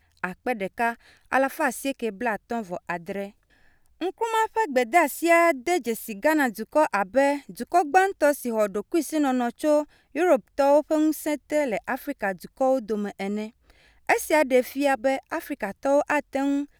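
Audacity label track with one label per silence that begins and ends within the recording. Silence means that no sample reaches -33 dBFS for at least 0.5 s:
3.280000	4.010000	silence
13.480000	14.090000	silence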